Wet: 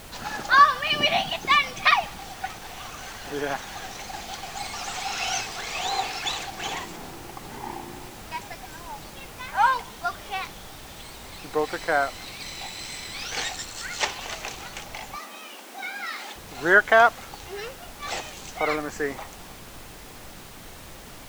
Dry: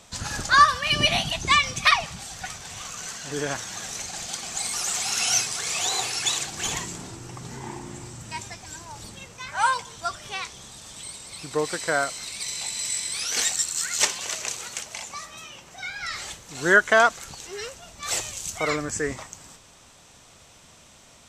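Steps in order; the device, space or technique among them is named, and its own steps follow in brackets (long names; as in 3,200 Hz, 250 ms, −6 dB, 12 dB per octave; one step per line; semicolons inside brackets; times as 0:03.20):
horn gramophone (band-pass filter 230–3,700 Hz; parametric band 790 Hz +8 dB 0.29 octaves; tape wow and flutter 27 cents; pink noise bed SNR 15 dB)
0:15.16–0:16.36: Butterworth high-pass 200 Hz 96 dB per octave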